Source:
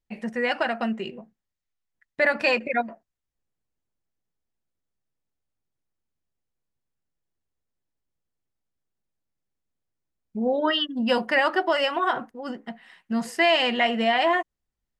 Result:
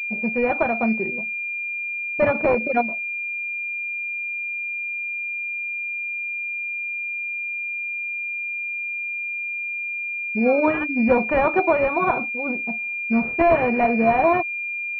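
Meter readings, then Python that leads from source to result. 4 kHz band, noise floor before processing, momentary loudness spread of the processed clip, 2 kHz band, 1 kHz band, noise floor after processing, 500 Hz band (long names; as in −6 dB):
below −20 dB, −84 dBFS, 7 LU, +6.0 dB, +3.5 dB, −28 dBFS, +5.0 dB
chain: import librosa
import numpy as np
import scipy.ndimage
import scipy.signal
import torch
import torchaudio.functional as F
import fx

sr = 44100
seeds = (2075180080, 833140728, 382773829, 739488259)

y = fx.env_lowpass(x, sr, base_hz=460.0, full_db=-21.5)
y = fx.pwm(y, sr, carrier_hz=2400.0)
y = y * librosa.db_to_amplitude(5.5)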